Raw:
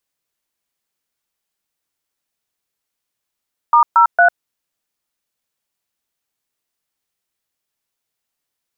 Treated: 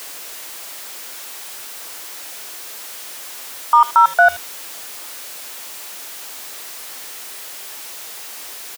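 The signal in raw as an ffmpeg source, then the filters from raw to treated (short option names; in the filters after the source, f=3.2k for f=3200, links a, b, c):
-f lavfi -i "aevalsrc='0.335*clip(min(mod(t,0.228),0.1-mod(t,0.228))/0.002,0,1)*(eq(floor(t/0.228),0)*(sin(2*PI*941*mod(t,0.228))+sin(2*PI*1209*mod(t,0.228)))+eq(floor(t/0.228),1)*(sin(2*PI*941*mod(t,0.228))+sin(2*PI*1336*mod(t,0.228)))+eq(floor(t/0.228),2)*(sin(2*PI*697*mod(t,0.228))+sin(2*PI*1477*mod(t,0.228))))':d=0.684:s=44100"
-filter_complex "[0:a]aeval=exprs='val(0)+0.5*0.0447*sgn(val(0))':c=same,highpass=350,asplit=2[a][b];[b]adelay=80,highpass=300,lowpass=3.4k,asoftclip=type=hard:threshold=-12.5dB,volume=-16dB[c];[a][c]amix=inputs=2:normalize=0"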